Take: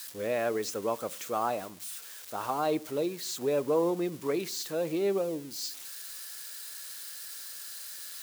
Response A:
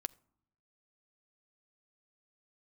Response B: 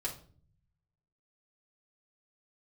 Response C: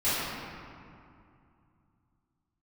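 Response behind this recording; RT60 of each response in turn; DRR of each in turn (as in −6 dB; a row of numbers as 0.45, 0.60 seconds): A; non-exponential decay, 0.45 s, 2.5 s; 16.0, −5.0, −16.0 decibels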